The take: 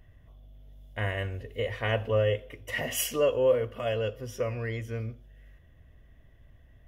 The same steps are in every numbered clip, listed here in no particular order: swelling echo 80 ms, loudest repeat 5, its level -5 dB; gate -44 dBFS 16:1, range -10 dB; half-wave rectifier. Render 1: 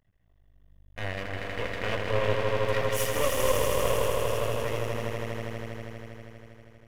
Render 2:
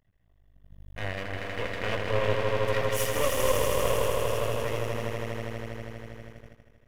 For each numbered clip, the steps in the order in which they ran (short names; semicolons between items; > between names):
gate > swelling echo > half-wave rectifier; swelling echo > half-wave rectifier > gate